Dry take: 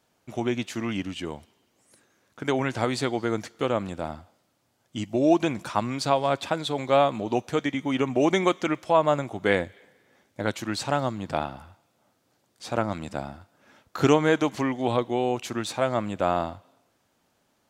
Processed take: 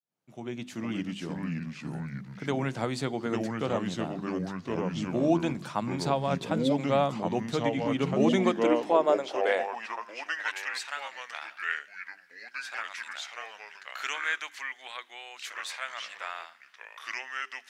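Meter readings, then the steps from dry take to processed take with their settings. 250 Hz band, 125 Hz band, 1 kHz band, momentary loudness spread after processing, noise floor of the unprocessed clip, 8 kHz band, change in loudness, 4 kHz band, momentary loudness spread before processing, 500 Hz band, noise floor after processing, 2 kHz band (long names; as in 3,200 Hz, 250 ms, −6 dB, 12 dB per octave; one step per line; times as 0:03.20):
−3.0 dB, −3.0 dB, −5.5 dB, 16 LU, −70 dBFS, −4.5 dB, −4.5 dB, −3.5 dB, 14 LU, −4.5 dB, −56 dBFS, −0.5 dB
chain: fade in at the beginning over 0.93 s
delay with pitch and tempo change per echo 382 ms, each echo −3 semitones, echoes 2
high-pass filter sweep 150 Hz → 1,800 Hz, 0:08.11–0:10.56
mains-hum notches 50/100/150/200/250/300/350/400 Hz
level −6 dB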